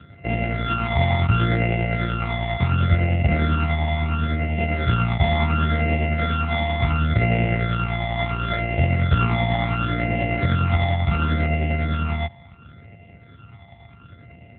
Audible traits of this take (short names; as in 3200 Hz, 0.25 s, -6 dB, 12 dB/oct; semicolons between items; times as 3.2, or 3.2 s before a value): a buzz of ramps at a fixed pitch in blocks of 64 samples; phasing stages 12, 0.71 Hz, lowest notch 450–1200 Hz; tremolo triangle 10 Hz, depth 35%; AMR-NB